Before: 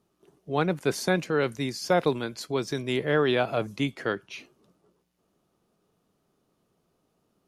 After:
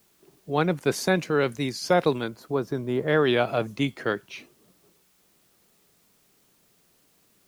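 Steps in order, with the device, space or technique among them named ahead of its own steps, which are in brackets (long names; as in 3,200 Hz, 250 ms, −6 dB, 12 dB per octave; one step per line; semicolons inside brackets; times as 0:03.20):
0:02.28–0:03.08: flat-topped bell 4,400 Hz −12.5 dB 2.7 octaves
plain cassette with noise reduction switched in (one half of a high-frequency compander decoder only; tape wow and flutter; white noise bed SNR 37 dB)
level +2 dB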